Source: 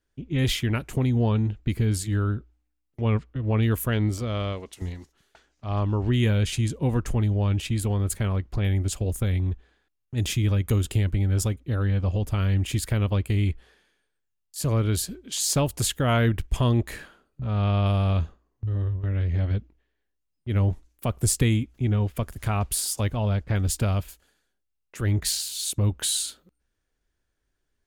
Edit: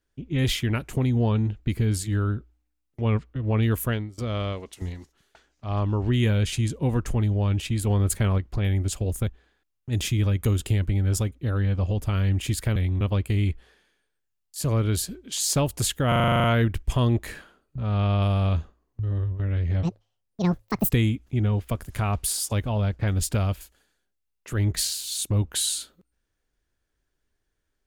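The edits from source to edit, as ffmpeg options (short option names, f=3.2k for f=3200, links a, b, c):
-filter_complex "[0:a]asplit=18[a][b][c][d][e][f][g][h][i][j][k][l][m][n][o][p][q][r];[a]atrim=end=4.18,asetpts=PTS-STARTPTS,afade=t=out:st=3.91:d=0.27:c=qua:silence=0.0794328[s];[b]atrim=start=4.18:end=7.872,asetpts=PTS-STARTPTS,afade=t=in:d=0.004:c=hsin:silence=0.0794328[t];[c]atrim=start=7.868:end=8.382,asetpts=PTS-STARTPTS,volume=3dB[u];[d]atrim=start=8.378:end=9.272[v];[e]atrim=start=9.518:end=13.012[w];[f]atrim=start=9.268:end=9.522[x];[g]atrim=start=13.008:end=16.122[y];[h]atrim=start=16.078:end=16.122[z];[i]atrim=start=16.078:end=16.122[aa];[j]atrim=start=16.078:end=16.122[ab];[k]atrim=start=16.078:end=16.122[ac];[l]atrim=start=16.078:end=16.122[ad];[m]atrim=start=16.078:end=16.122[ae];[n]atrim=start=16.078:end=16.122[af];[o]atrim=start=16.078:end=16.122[ag];[p]atrim=start=16.078:end=19.474[ah];[q]atrim=start=19.47:end=21.38,asetpts=PTS-STARTPTS,asetrate=78498,aresample=44100[ai];[r]atrim=start=21.376[aj];[s][t]concat=n=2:v=0:a=1[ak];[ak][u]acrossfade=d=0.004:c1=hsin:c2=hsin[al];[al][v]acrossfade=d=0.004:c1=hsin:c2=hsin[am];[am][w]acrossfade=d=0.004:c1=hsin:c2=hsin[an];[an][x]acrossfade=d=0.004:c1=hsin:c2=hsin[ao];[ao][y]acrossfade=d=0.004:c1=hsin:c2=hsin[ap];[ap][z]acrossfade=d=0.004:c1=hsin:c2=hsin[aq];[aq][aa]acrossfade=d=0.004:c1=hsin:c2=hsin[ar];[ar][ab]acrossfade=d=0.004:c1=hsin:c2=hsin[as];[as][ac]acrossfade=d=0.004:c1=hsin:c2=hsin[at];[at][ad]acrossfade=d=0.004:c1=hsin:c2=hsin[au];[au][ae]acrossfade=d=0.004:c1=hsin:c2=hsin[av];[av][af]acrossfade=d=0.004:c1=hsin:c2=hsin[aw];[aw][ag]acrossfade=d=0.004:c1=hsin:c2=hsin[ax];[ax][ah]acrossfade=d=0.004:c1=hsin:c2=hsin[ay];[ay][ai]acrossfade=d=0.004:c1=hsin:c2=hsin[az];[az][aj]acrossfade=d=0.004:c1=hsin:c2=hsin"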